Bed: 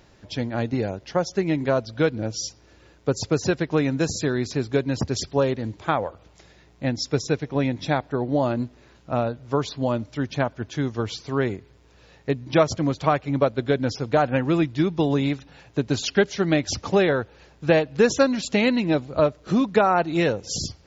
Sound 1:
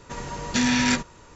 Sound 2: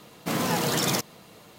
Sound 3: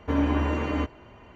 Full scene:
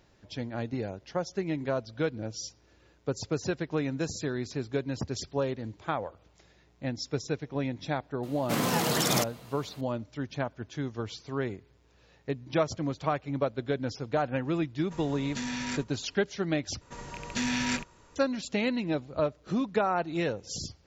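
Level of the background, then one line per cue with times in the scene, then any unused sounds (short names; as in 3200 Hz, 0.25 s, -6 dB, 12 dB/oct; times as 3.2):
bed -8.5 dB
8.23 add 2 -1.5 dB
14.81 add 1 -13 dB
16.81 replace with 1 -8.5 dB + rattling part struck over -32 dBFS, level -18 dBFS
not used: 3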